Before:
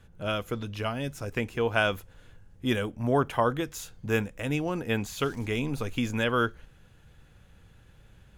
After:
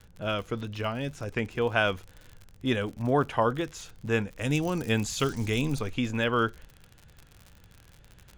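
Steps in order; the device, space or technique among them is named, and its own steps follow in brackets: lo-fi chain (low-pass 6.6 kHz 12 dB/octave; wow and flutter; crackle 66 per s -37 dBFS); 4.41–5.79 s: tone controls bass +4 dB, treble +12 dB

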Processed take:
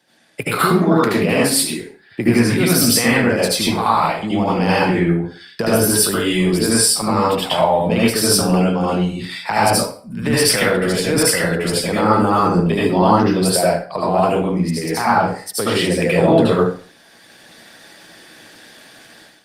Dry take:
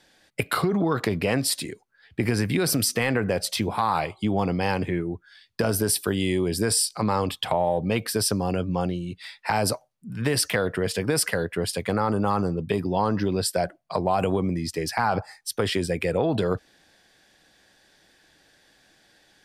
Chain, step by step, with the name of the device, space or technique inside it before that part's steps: 0.62–1.69 s: peaking EQ 120 Hz -6 dB 0.34 oct; far-field microphone of a smart speaker (reverberation RT60 0.40 s, pre-delay 70 ms, DRR -7 dB; high-pass 120 Hz 24 dB/octave; level rider gain up to 13.5 dB; trim -1.5 dB; Opus 32 kbps 48 kHz)

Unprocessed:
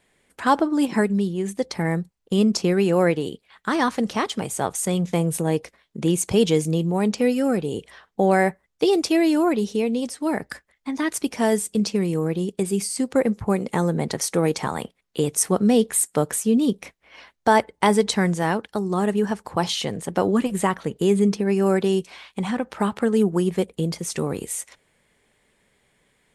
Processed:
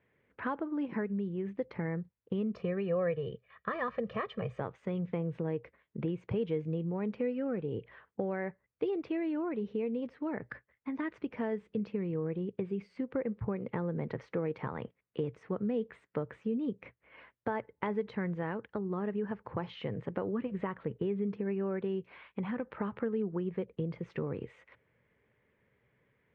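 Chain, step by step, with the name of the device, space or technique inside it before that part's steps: bass amplifier (compression 3:1, threshold -26 dBFS, peak gain reduction 11 dB; cabinet simulation 60–2400 Hz, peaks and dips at 72 Hz +6 dB, 120 Hz +10 dB, 480 Hz +4 dB, 750 Hz -6 dB); 2.55–4.60 s: comb 1.7 ms, depth 85%; trim -7.5 dB

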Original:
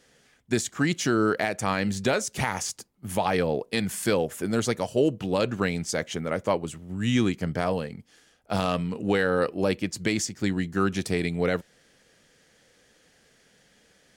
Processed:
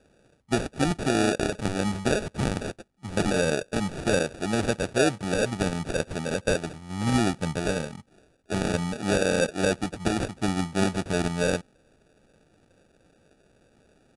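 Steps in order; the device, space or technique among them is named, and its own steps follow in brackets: crushed at another speed (playback speed 2×; sample-and-hold 21×; playback speed 0.5×)

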